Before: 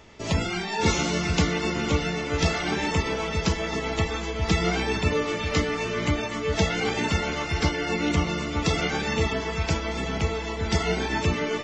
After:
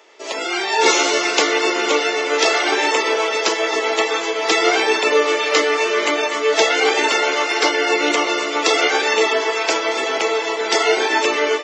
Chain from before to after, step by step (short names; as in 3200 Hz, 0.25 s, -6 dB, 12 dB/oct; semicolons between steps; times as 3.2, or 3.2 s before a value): steep high-pass 350 Hz 36 dB/oct; AGC gain up to 9 dB; gain +2.5 dB